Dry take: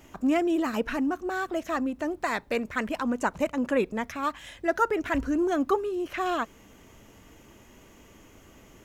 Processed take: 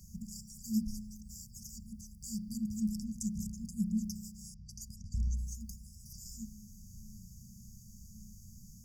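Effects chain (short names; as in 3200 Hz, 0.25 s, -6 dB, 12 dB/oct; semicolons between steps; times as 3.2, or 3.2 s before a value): 4.54–5.37 low-pass opened by the level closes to 340 Hz, open at -21 dBFS; spring tank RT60 1.4 s, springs 33 ms, DRR 3.5 dB; FFT band-reject 230–4600 Hz; gain +3 dB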